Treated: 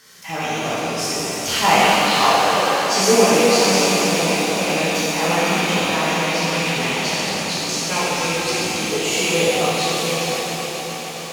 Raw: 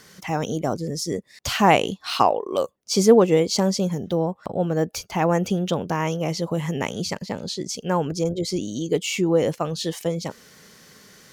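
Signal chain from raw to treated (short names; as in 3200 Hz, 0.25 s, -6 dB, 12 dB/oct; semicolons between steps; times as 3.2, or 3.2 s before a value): rattling part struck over -27 dBFS, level -19 dBFS; tilt shelf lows -5.5 dB, about 730 Hz; swelling echo 0.139 s, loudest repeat 5, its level -18 dB; shimmer reverb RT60 3.3 s, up +7 st, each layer -8 dB, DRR -9.5 dB; gain -6.5 dB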